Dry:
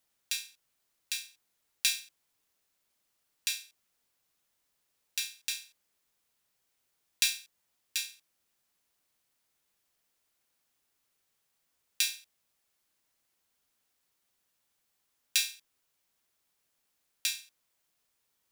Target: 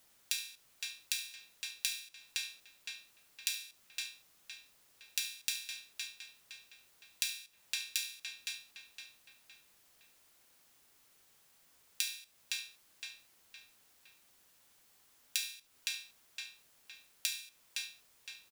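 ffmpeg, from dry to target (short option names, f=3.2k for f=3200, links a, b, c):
-filter_complex "[0:a]asplit=2[a][b];[b]adelay=513,lowpass=f=3.8k:p=1,volume=-14.5dB,asplit=2[c][d];[d]adelay=513,lowpass=f=3.8k:p=1,volume=0.47,asplit=2[e][f];[f]adelay=513,lowpass=f=3.8k:p=1,volume=0.47,asplit=2[g][h];[h]adelay=513,lowpass=f=3.8k:p=1,volume=0.47[i];[c][e][g][i]amix=inputs=4:normalize=0[j];[a][j]amix=inputs=2:normalize=0,acompressor=threshold=-43dB:ratio=10,asplit=2[k][l];[l]aecho=0:1:73:0.133[m];[k][m]amix=inputs=2:normalize=0,volume=11dB"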